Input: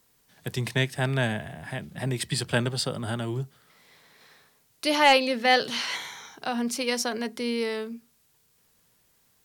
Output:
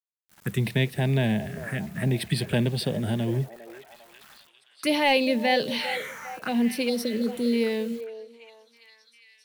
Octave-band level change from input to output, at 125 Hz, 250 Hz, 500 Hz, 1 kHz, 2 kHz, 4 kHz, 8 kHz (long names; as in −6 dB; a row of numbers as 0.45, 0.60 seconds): +4.0, +5.0, +1.5, −4.0, −2.0, −2.5, −5.5 decibels